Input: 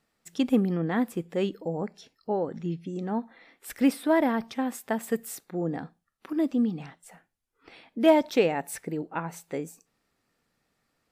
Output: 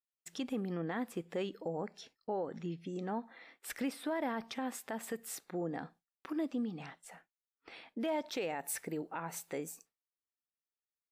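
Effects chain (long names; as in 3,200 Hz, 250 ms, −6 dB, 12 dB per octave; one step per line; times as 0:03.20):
downward compressor 2 to 1, threshold −32 dBFS, peak gain reduction 10 dB
low-shelf EQ 310 Hz −9 dB
downward expander −55 dBFS
high-shelf EQ 9,700 Hz −7.5 dB, from 0:08.37 +5 dB
brickwall limiter −27.5 dBFS, peak gain reduction 7.5 dB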